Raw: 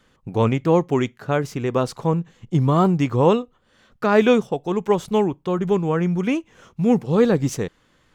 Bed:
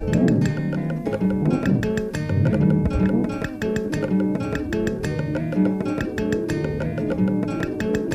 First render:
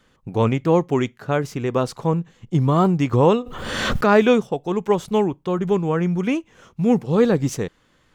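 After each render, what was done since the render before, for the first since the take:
0:03.13–0:04.26: background raised ahead of every attack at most 34 dB per second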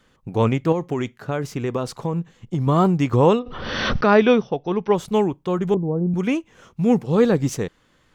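0:00.72–0:02.67: downward compressor, threshold −18 dBFS
0:03.39–0:04.96: linear-phase brick-wall low-pass 6,100 Hz
0:05.74–0:06.14: Bessel low-pass filter 510 Hz, order 6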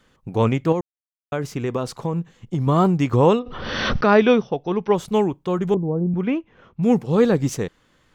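0:00.81–0:01.32: silence
0:06.04–0:06.83: high-frequency loss of the air 310 metres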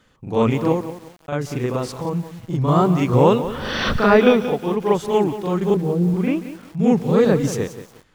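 backwards echo 40 ms −4.5 dB
feedback echo at a low word length 180 ms, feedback 35%, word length 6 bits, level −12 dB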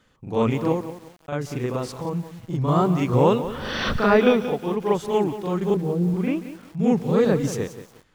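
level −3.5 dB

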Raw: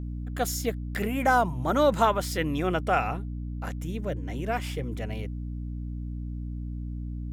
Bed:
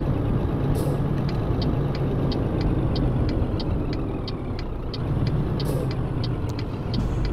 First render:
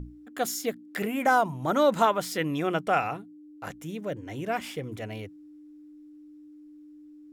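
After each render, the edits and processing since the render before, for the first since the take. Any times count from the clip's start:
mains-hum notches 60/120/180/240 Hz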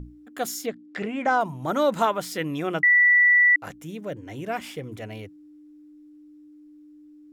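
0:00.66–0:01.41: Bessel low-pass filter 4,800 Hz, order 6
0:02.83–0:03.56: beep over 1,960 Hz −13.5 dBFS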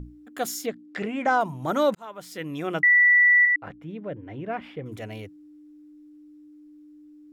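0:01.95–0:02.84: fade in
0:03.45–0:04.86: high-frequency loss of the air 410 metres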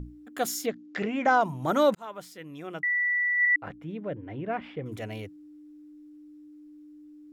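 0:00.66–0:01.43: bad sample-rate conversion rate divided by 3×, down none, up filtered
0:02.17–0:03.55: duck −9.5 dB, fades 0.18 s
0:04.14–0:04.81: high-frequency loss of the air 75 metres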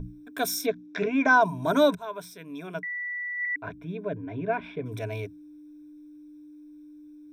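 EQ curve with evenly spaced ripples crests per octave 1.6, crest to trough 15 dB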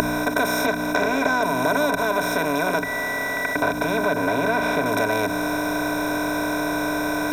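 compressor on every frequency bin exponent 0.2
downward compressor 3 to 1, threshold −19 dBFS, peak gain reduction 7 dB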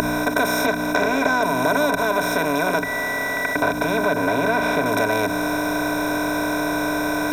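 level +1.5 dB
brickwall limiter −3 dBFS, peak gain reduction 2.5 dB

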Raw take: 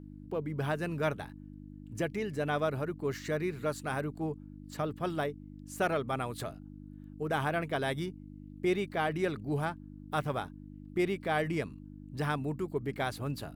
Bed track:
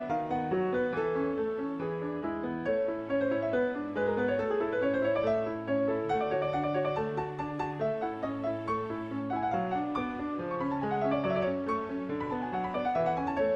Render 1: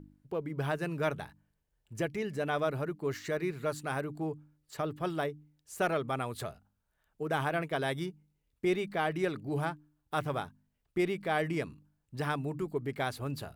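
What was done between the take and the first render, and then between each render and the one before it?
hum removal 50 Hz, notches 6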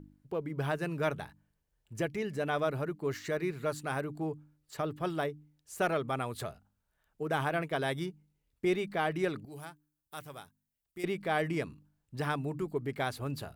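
0:09.45–0:11.04: first-order pre-emphasis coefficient 0.8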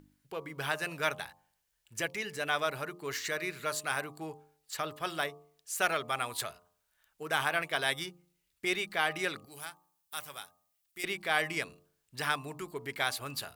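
tilt shelving filter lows −10 dB, about 830 Hz
hum removal 87.81 Hz, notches 14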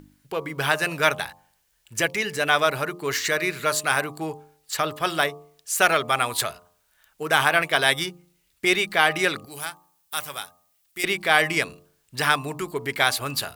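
level +11 dB
brickwall limiter −3 dBFS, peak gain reduction 1 dB

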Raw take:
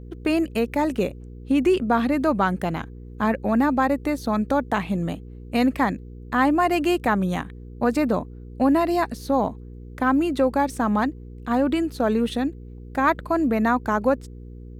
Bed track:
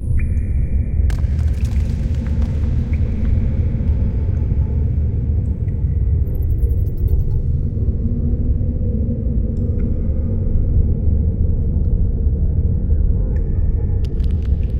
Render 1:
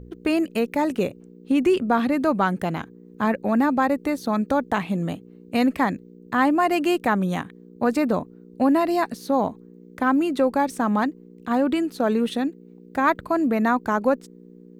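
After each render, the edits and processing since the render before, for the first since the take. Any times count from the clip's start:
hum removal 60 Hz, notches 2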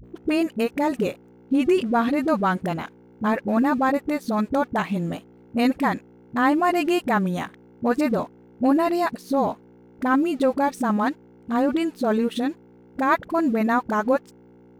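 dead-zone distortion −49 dBFS
all-pass dispersion highs, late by 43 ms, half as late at 380 Hz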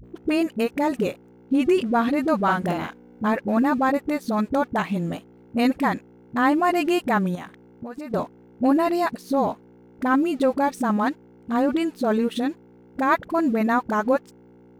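0:02.43–0:03.26: double-tracking delay 46 ms −2.5 dB
0:07.35–0:08.14: downward compressor 10 to 1, threshold −31 dBFS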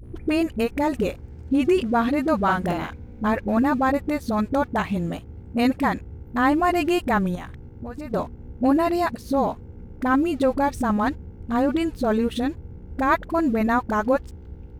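mix in bed track −22.5 dB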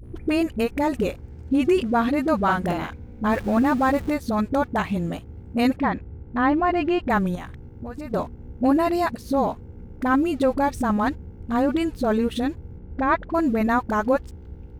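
0:03.30–0:04.14: converter with a step at zero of −34.5 dBFS
0:05.76–0:07.10: high-frequency loss of the air 220 metres
0:12.78–0:13.34: high-frequency loss of the air 180 metres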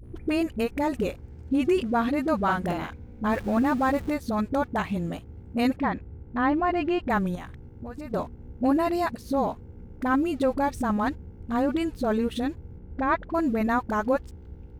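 level −3.5 dB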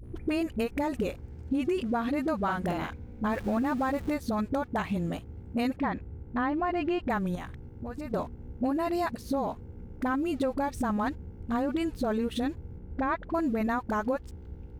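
downward compressor, threshold −25 dBFS, peak gain reduction 8 dB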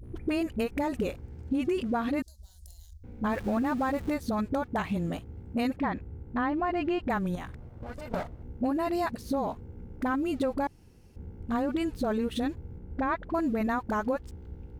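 0:02.22–0:03.04: inverse Chebyshev band-stop filter 130–2,600 Hz
0:07.52–0:08.43: lower of the sound and its delayed copy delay 1.4 ms
0:10.67–0:11.16: fill with room tone

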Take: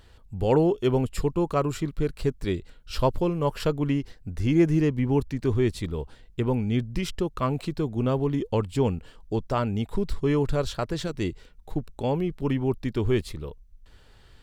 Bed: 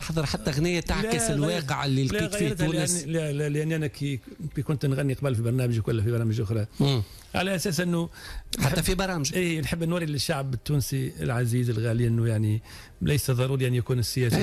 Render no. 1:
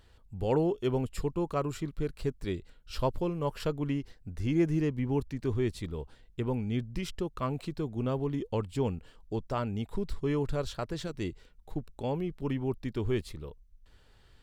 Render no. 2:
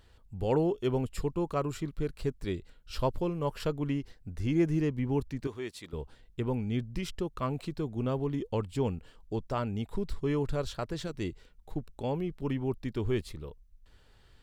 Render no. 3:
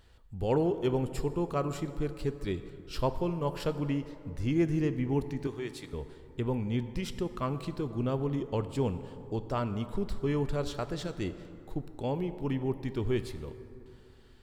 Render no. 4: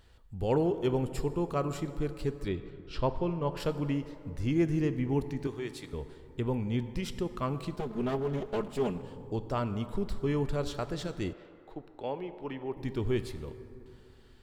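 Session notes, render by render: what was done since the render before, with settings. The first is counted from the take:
level −6.5 dB
0:05.47–0:05.93: high-pass filter 790 Hz 6 dB per octave
dense smooth reverb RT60 2.8 s, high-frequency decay 0.45×, DRR 10.5 dB
0:02.48–0:03.57: low-pass filter 4,100 Hz; 0:07.76–0:09.02: lower of the sound and its delayed copy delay 4.8 ms; 0:11.33–0:12.77: three-way crossover with the lows and the highs turned down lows −14 dB, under 350 Hz, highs −17 dB, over 4,100 Hz

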